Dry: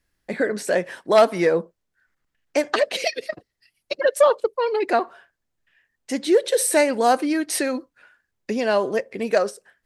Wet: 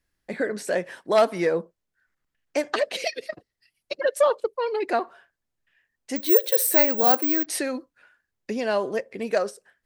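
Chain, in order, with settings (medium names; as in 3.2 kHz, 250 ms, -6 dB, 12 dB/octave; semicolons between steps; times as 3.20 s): 6.16–7.46 s: careless resampling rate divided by 2×, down none, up zero stuff; trim -4 dB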